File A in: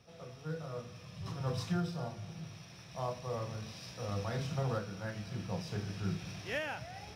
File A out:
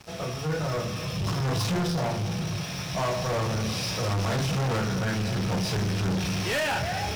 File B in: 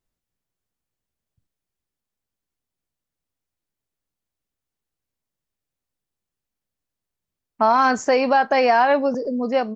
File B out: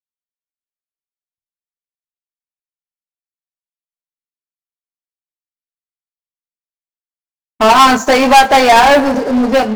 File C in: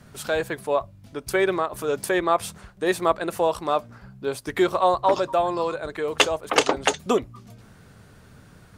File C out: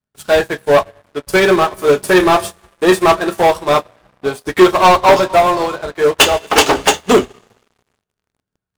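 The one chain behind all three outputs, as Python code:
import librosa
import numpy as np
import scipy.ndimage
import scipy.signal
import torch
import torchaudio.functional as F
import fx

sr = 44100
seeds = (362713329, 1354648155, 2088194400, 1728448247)

y = fx.rev_double_slope(x, sr, seeds[0], early_s=0.21, late_s=2.9, knee_db=-21, drr_db=3.0)
y = fx.leveller(y, sr, passes=5)
y = fx.upward_expand(y, sr, threshold_db=-21.0, expansion=2.5)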